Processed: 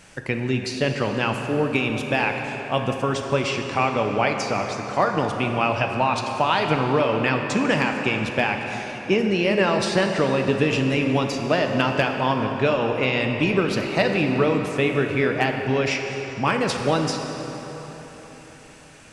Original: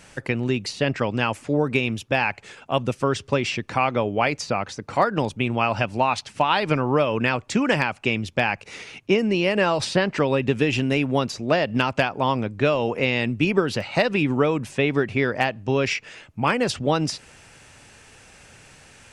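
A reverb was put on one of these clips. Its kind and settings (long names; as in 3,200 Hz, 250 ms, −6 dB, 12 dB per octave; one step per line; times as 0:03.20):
dense smooth reverb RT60 4.3 s, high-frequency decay 0.65×, DRR 3 dB
level −1 dB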